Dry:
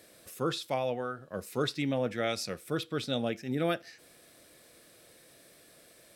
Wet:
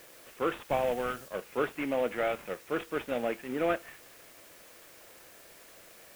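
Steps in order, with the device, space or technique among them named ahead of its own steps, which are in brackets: army field radio (BPF 350–2900 Hz; CVSD 16 kbps; white noise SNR 21 dB); 0.7–1.28 tone controls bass +8 dB, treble +4 dB; gain +3.5 dB

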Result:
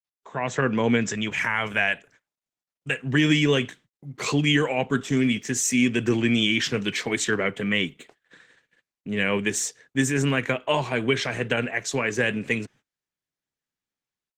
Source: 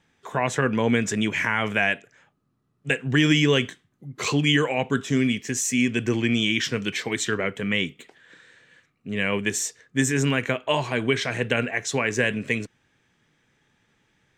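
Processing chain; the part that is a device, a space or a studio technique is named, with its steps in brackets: 1.1–3.03 dynamic EQ 300 Hz, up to -7 dB, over -38 dBFS, Q 0.84; video call (HPF 100 Hz 24 dB/oct; AGC gain up to 10 dB; gate -43 dBFS, range -32 dB; gain -6.5 dB; Opus 16 kbps 48000 Hz)

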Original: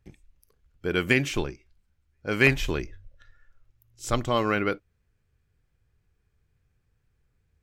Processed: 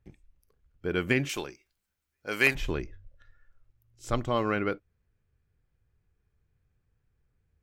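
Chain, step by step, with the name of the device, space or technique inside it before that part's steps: 1.29–2.55 RIAA curve recording; behind a face mask (high shelf 2800 Hz -7.5 dB); gain -2.5 dB

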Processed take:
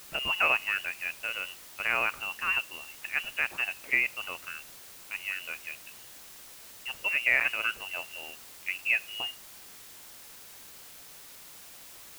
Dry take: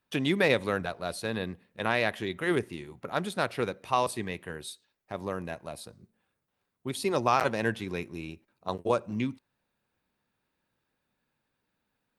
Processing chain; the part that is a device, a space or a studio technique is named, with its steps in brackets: scrambled radio voice (BPF 310–3000 Hz; inverted band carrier 3100 Hz; white noise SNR 15 dB)

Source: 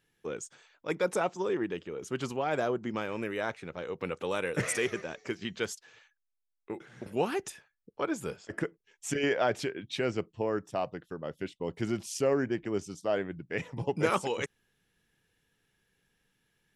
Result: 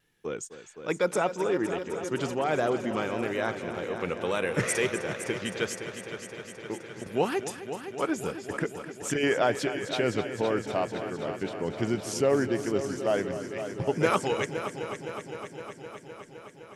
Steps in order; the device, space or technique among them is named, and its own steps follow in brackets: 13.37–13.8 passive tone stack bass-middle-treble 5-5-5; multi-head tape echo (multi-head echo 0.257 s, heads first and second, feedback 72%, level -13 dB; wow and flutter 23 cents); gain +3 dB

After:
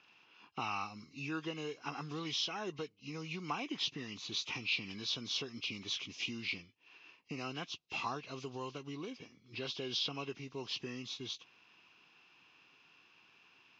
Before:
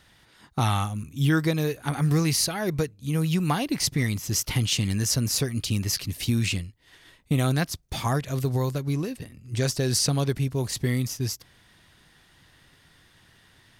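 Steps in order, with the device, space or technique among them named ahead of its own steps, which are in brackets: hearing aid with frequency lowering (nonlinear frequency compression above 1600 Hz 1.5:1; compressor 2:1, threshold -29 dBFS, peak gain reduction 6.5 dB; speaker cabinet 310–5900 Hz, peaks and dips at 590 Hz -8 dB, 1100 Hz +5 dB, 1800 Hz -9 dB, 2600 Hz +9 dB); gain -6.5 dB

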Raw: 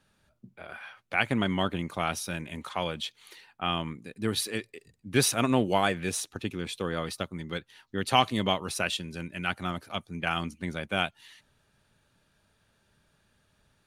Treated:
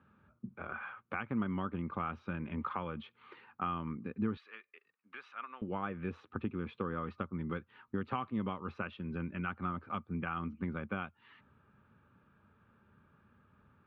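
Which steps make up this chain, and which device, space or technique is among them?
bass amplifier (compressor 4:1, threshold -38 dBFS, peak gain reduction 18.5 dB; speaker cabinet 73–2100 Hz, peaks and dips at 84 Hz +5 dB, 220 Hz +6 dB, 660 Hz -9 dB, 1200 Hz +9 dB, 1900 Hz -8 dB); 4.37–5.62 HPF 1300 Hz 12 dB/oct; bell 1100 Hz -2 dB; gain +3 dB

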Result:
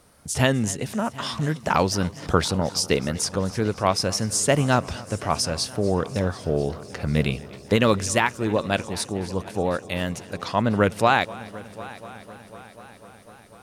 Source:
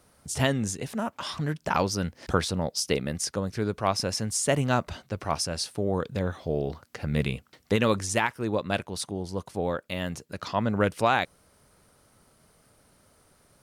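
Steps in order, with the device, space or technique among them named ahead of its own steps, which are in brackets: multi-head tape echo (multi-head echo 0.248 s, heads first and third, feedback 67%, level -20.5 dB; wow and flutter); gain +4.5 dB

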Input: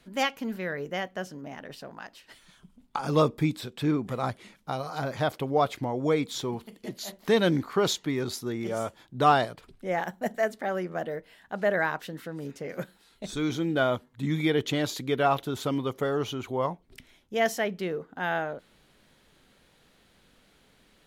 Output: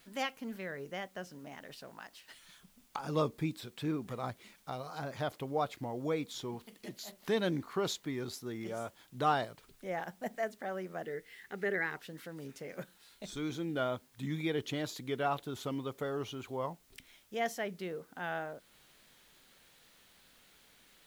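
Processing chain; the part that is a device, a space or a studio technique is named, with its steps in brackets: noise-reduction cassette on a plain deck (mismatched tape noise reduction encoder only; wow and flutter; white noise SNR 30 dB); 11.02–11.97 thirty-one-band EQ 400 Hz +10 dB, 630 Hz -12 dB, 1000 Hz -8 dB, 2000 Hz +9 dB; gain -9 dB

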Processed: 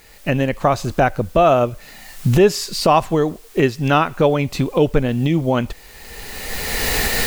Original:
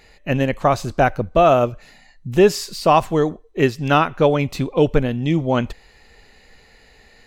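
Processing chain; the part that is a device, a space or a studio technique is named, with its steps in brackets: cheap recorder with automatic gain (white noise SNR 34 dB; recorder AGC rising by 23 dB/s)

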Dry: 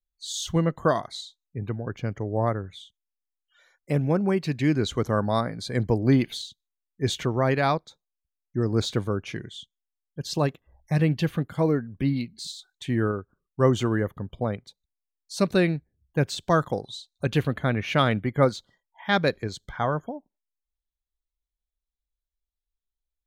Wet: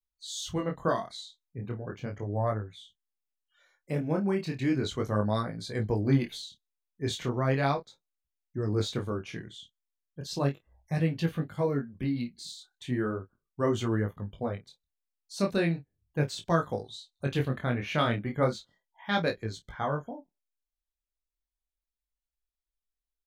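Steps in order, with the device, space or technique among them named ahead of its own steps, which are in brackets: double-tracked vocal (doubler 29 ms -11.5 dB; chorus 0.36 Hz, delay 18 ms, depth 7.8 ms); gain -2.5 dB

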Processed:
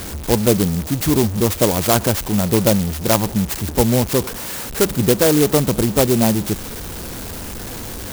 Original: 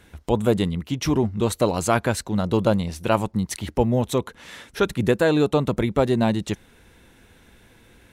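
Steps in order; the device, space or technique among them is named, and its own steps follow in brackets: early CD player with a faulty converter (zero-crossing step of -27.5 dBFS; clock jitter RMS 0.14 ms); gain +3.5 dB

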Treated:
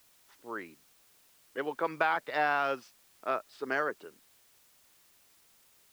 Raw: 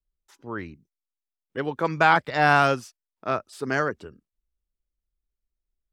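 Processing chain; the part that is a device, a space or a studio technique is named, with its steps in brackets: baby monitor (BPF 360–3800 Hz; compressor, threshold -20 dBFS, peak gain reduction 7.5 dB; white noise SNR 28 dB); gain -4 dB

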